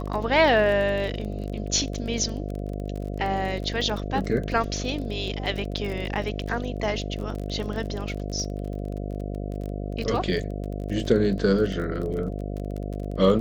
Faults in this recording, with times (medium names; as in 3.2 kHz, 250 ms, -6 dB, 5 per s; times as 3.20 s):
buzz 50 Hz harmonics 14 -31 dBFS
crackle 29 per s -31 dBFS
3.81 s: dropout 2.2 ms